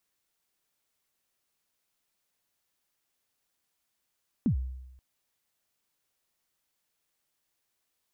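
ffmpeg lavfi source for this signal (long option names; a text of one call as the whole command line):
ffmpeg -f lavfi -i "aevalsrc='0.1*pow(10,-3*t/0.96)*sin(2*PI*(280*0.097/log(64/280)*(exp(log(64/280)*min(t,0.097)/0.097)-1)+64*max(t-0.097,0)))':duration=0.53:sample_rate=44100" out.wav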